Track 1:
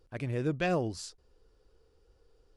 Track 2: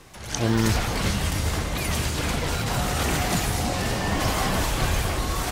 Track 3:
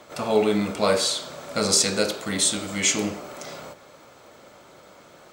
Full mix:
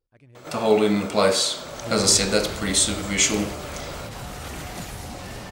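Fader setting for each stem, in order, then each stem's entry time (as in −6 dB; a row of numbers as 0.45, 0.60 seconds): −17.5, −10.5, +2.0 decibels; 0.00, 1.45, 0.35 seconds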